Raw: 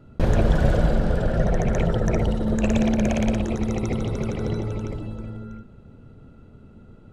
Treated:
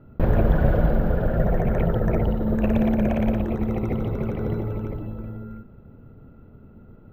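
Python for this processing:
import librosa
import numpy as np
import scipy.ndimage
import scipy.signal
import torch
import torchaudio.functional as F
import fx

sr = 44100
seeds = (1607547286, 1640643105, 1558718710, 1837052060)

y = (np.kron(scipy.signal.resample_poly(x, 1, 3), np.eye(3)[0]) * 3)[:len(x)]
y = scipy.signal.sosfilt(scipy.signal.butter(2, 1900.0, 'lowpass', fs=sr, output='sos'), y)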